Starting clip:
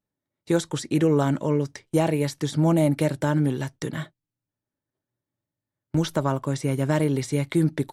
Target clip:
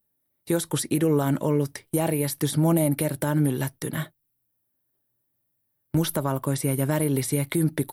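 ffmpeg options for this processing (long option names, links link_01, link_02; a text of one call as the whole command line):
ffmpeg -i in.wav -af "aexciter=amount=5.1:drive=8.5:freq=9600,alimiter=limit=-14.5dB:level=0:latency=1:release=168,volume=2dB" out.wav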